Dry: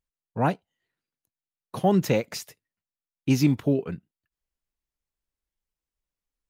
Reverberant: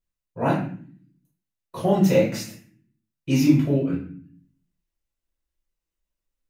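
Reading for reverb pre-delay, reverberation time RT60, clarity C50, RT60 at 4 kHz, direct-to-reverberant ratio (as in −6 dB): 3 ms, 0.50 s, 4.5 dB, 0.40 s, −7.5 dB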